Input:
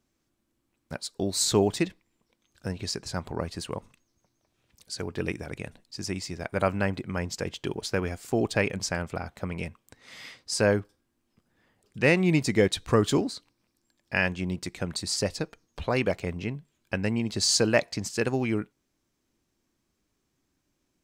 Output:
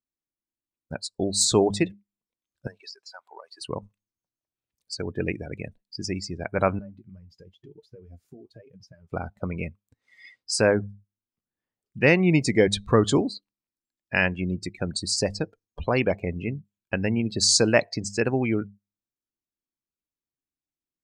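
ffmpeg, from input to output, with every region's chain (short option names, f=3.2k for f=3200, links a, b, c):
-filter_complex "[0:a]asettb=1/sr,asplit=3[a][b][c];[a]atrim=end=2.674[d];[b]atrim=start=2.67:end=3.61,asetpts=PTS-STARTPTS,afade=t=in:d=0.004:c=qsin,afade=t=out:st=0.936:d=0.004:c=qsin,highpass=790,acompressor=threshold=-37dB:ratio=5:attack=3.2:release=140:knee=1:detection=peak[e];[c]atrim=start=3.606[f];[d][e]acrossfade=d=0.004:c1=hsin:c2=qsin[g];[g][f]acrossfade=d=0.004:c1=qsin:c2=hsin,asettb=1/sr,asplit=3[h][i][j];[h]atrim=end=6.794[k];[i]atrim=start=6.79:end=9.11,asetpts=PTS-STARTPTS,afade=t=in:d=0.004:c=qsin,afade=t=out:st=2.316:d=0.004:c=qsin,equalizer=f=7.9k:w=6.6:g=-9.5,acompressor=threshold=-38dB:ratio=10:attack=3.2:release=140:knee=1:detection=peak,flanger=delay=6.6:depth=6.1:regen=58:speed=1:shape=sinusoidal[l];[j]atrim=start=9.106[m];[k][l]acrossfade=d=0.004:c1=hsin:c2=qsin[n];[n][m]acrossfade=d=0.004:c1=qsin:c2=hsin,bandreject=f=101.1:t=h:w=4,bandreject=f=202.2:t=h:w=4,afftdn=nr=27:nf=-37,highshelf=f=9k:g=4.5,volume=3dB"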